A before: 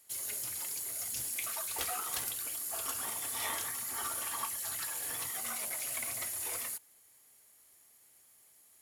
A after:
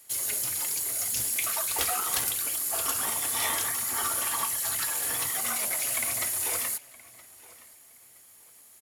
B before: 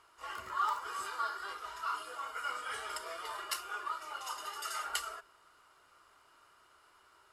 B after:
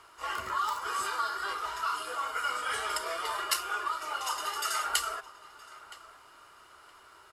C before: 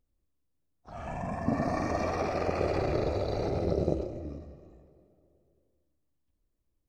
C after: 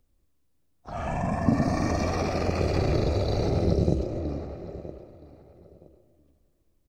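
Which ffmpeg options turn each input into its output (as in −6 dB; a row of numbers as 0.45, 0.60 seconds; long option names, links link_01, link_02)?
-filter_complex "[0:a]asplit=2[link_01][link_02];[link_02]adelay=969,lowpass=frequency=4800:poles=1,volume=-19.5dB,asplit=2[link_03][link_04];[link_04]adelay=969,lowpass=frequency=4800:poles=1,volume=0.23[link_05];[link_03][link_05]amix=inputs=2:normalize=0[link_06];[link_01][link_06]amix=inputs=2:normalize=0,acrossover=split=280|3000[link_07][link_08][link_09];[link_08]acompressor=threshold=-37dB:ratio=6[link_10];[link_07][link_10][link_09]amix=inputs=3:normalize=0,volume=8.5dB"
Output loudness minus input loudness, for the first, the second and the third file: +8.5, +6.5, +4.5 LU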